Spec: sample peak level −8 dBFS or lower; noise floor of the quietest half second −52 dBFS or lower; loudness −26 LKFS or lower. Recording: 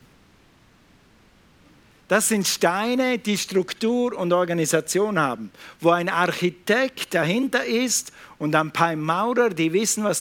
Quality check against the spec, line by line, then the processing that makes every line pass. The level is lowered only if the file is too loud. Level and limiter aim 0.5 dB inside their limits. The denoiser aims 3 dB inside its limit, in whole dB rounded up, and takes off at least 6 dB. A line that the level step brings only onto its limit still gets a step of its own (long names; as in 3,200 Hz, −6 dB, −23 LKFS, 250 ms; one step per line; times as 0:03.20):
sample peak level −4.0 dBFS: out of spec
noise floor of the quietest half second −56 dBFS: in spec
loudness −22.0 LKFS: out of spec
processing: level −4.5 dB